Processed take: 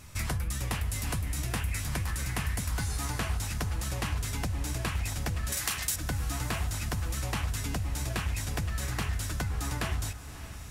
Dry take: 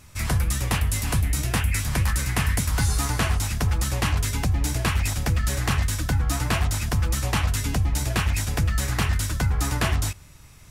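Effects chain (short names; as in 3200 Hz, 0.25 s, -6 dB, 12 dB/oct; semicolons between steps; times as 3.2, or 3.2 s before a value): 5.52–5.96 tilt +4 dB/oct; compressor 4:1, threshold -30 dBFS, peak gain reduction 11.5 dB; diffused feedback echo 0.604 s, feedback 57%, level -13.5 dB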